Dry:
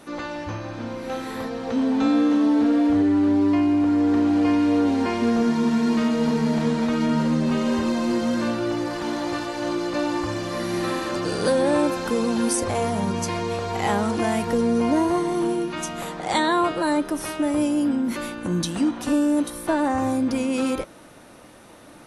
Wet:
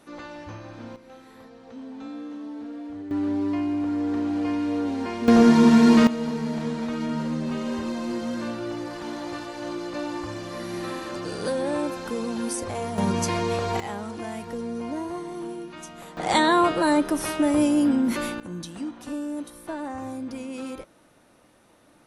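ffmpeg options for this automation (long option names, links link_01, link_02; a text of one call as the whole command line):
ffmpeg -i in.wav -af "asetnsamples=nb_out_samples=441:pad=0,asendcmd='0.96 volume volume -17.5dB;3.11 volume volume -6.5dB;5.28 volume volume 6dB;6.07 volume volume -6.5dB;12.98 volume volume 1dB;13.8 volume volume -11dB;16.17 volume volume 1.5dB;18.4 volume volume -11dB',volume=-8dB" out.wav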